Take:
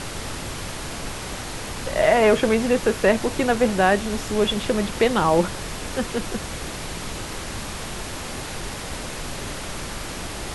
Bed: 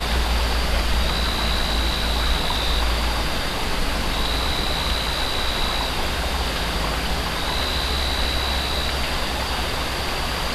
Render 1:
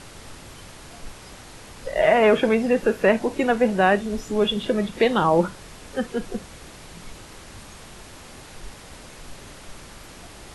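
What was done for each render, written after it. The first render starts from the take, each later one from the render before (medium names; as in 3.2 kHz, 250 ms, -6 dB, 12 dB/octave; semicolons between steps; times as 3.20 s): noise print and reduce 11 dB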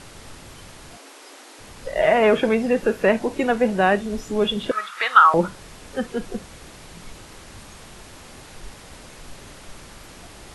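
0.97–1.59 s: steep high-pass 250 Hz 96 dB/octave; 4.71–5.34 s: resonant high-pass 1.3 kHz, resonance Q 8.3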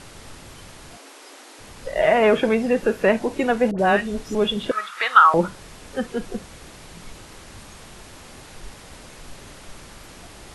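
3.71–4.35 s: phase dispersion highs, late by 76 ms, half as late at 1.1 kHz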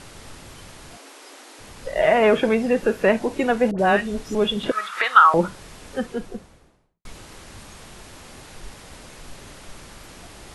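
4.63–5.04 s: three bands compressed up and down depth 100%; 5.87–7.05 s: studio fade out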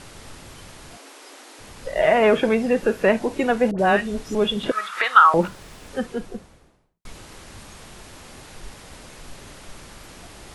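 5.42–5.89 s: self-modulated delay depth 0.2 ms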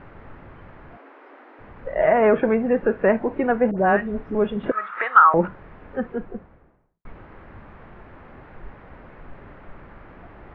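low-pass 1.9 kHz 24 dB/octave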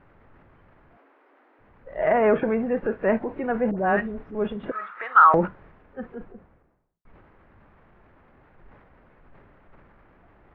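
transient shaper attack -3 dB, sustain +6 dB; upward expansion 1.5:1, over -35 dBFS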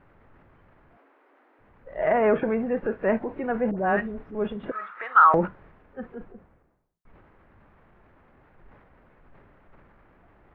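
trim -1.5 dB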